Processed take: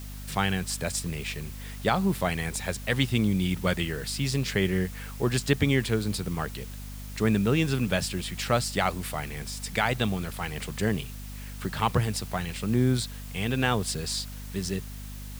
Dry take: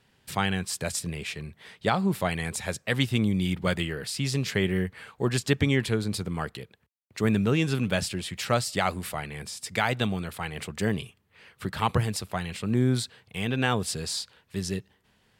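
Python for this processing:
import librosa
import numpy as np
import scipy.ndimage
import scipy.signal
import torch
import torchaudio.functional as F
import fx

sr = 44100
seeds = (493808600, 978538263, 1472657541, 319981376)

y = fx.add_hum(x, sr, base_hz=50, snr_db=11)
y = fx.quant_dither(y, sr, seeds[0], bits=8, dither='triangular')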